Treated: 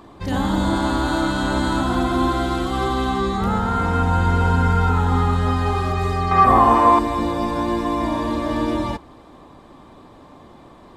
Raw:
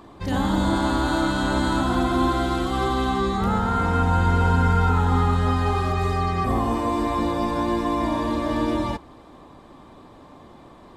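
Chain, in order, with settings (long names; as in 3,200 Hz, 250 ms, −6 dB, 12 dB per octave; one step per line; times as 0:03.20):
0:06.31–0:06.99: parametric band 1,100 Hz +13 dB 2.1 octaves
level +1.5 dB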